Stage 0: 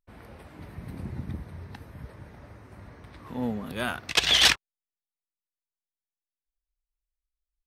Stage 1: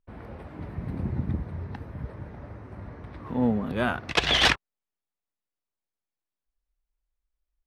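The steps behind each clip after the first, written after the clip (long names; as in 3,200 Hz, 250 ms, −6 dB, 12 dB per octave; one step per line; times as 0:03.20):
low-pass filter 1,200 Hz 6 dB per octave
level +6.5 dB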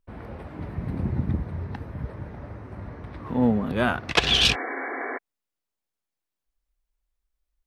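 healed spectral selection 0:04.27–0:05.15, 250–2,300 Hz before
level +3 dB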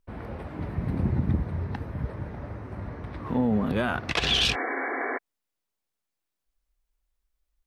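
brickwall limiter −16 dBFS, peak gain reduction 10 dB
level +1.5 dB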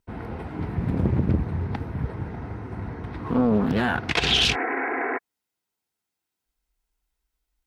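notch comb filter 580 Hz
highs frequency-modulated by the lows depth 0.69 ms
level +4.5 dB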